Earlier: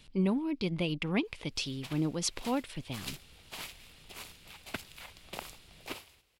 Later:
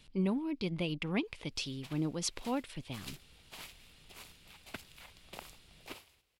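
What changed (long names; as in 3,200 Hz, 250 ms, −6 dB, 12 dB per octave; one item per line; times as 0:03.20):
speech −3.0 dB
background −6.0 dB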